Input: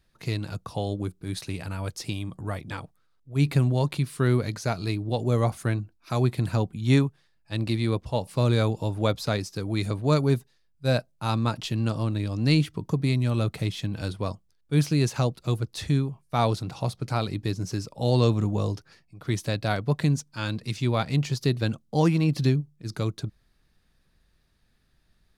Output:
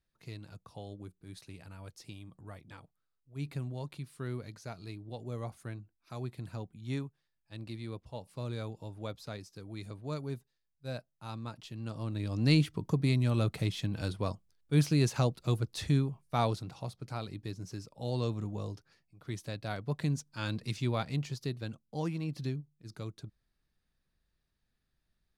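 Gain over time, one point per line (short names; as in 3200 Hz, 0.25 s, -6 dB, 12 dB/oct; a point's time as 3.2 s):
11.74 s -16 dB
12.38 s -4 dB
16.26 s -4 dB
16.87 s -12 dB
19.62 s -12 dB
20.62 s -4.5 dB
21.63 s -13.5 dB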